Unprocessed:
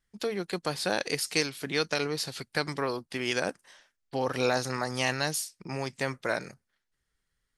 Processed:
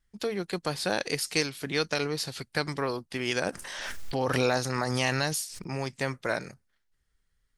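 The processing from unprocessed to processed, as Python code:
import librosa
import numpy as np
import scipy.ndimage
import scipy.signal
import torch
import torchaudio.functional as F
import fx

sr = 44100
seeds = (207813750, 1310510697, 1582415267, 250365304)

y = fx.low_shelf(x, sr, hz=83.0, db=9.5)
y = fx.pre_swell(y, sr, db_per_s=25.0, at=(3.46, 5.7))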